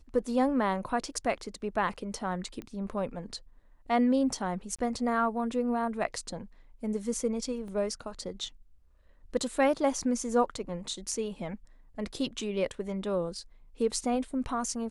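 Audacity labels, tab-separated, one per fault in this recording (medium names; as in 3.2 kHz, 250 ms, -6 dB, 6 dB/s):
2.620000	2.620000	pop -27 dBFS
4.760000	4.790000	dropout 26 ms
7.680000	7.680000	dropout 2.3 ms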